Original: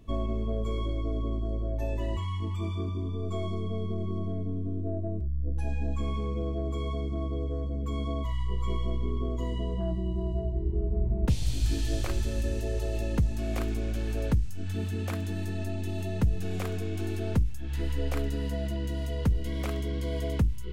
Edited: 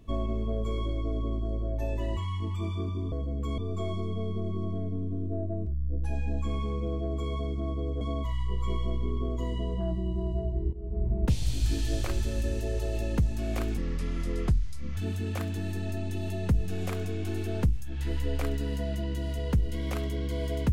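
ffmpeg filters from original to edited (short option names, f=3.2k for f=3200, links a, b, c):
-filter_complex "[0:a]asplit=7[a][b][c][d][e][f][g];[a]atrim=end=3.122[h];[b]atrim=start=7.548:end=8.012[i];[c]atrim=start=3.118:end=7.552[j];[d]atrim=start=8.008:end=10.73,asetpts=PTS-STARTPTS,afade=t=out:st=2.718:d=0.004:c=hsin:silence=0.125893[k];[e]atrim=start=10.73:end=13.774,asetpts=PTS-STARTPTS,afade=t=in:d=0.35:silence=0.125893[l];[f]atrim=start=13.77:end=14.69,asetpts=PTS-STARTPTS,asetrate=33957,aresample=44100[m];[g]atrim=start=14.686[n];[h][i]acrossfade=d=0.004:c1=hsin:c2=hsin[o];[o][j]acrossfade=d=0.004:c1=hsin:c2=hsin[p];[k][l]concat=n=2:v=0:a=1[q];[p][q]acrossfade=d=0.004:c1=hsin:c2=hsin[r];[r][m]acrossfade=d=0.004:c1=hsin:c2=hsin[s];[s][n]acrossfade=d=0.004:c1=hsin:c2=hsin"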